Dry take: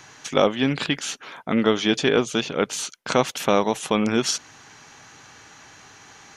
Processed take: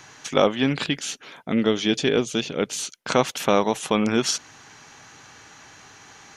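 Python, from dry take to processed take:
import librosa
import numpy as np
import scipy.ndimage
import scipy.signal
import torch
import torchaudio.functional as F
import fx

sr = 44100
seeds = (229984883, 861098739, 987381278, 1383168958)

y = fx.peak_eq(x, sr, hz=1100.0, db=-7.0, octaves=1.5, at=(0.84, 3.01))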